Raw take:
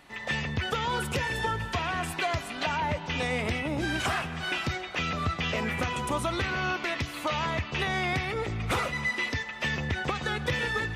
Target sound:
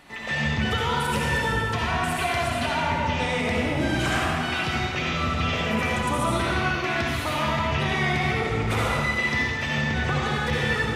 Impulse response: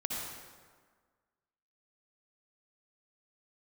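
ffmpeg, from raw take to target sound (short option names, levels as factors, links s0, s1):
-filter_complex "[0:a]asplit=2[s0][s1];[s1]alimiter=level_in=1.88:limit=0.0631:level=0:latency=1,volume=0.531,volume=1.26[s2];[s0][s2]amix=inputs=2:normalize=0[s3];[1:a]atrim=start_sample=2205,asetrate=42336,aresample=44100[s4];[s3][s4]afir=irnorm=-1:irlink=0,volume=0.75"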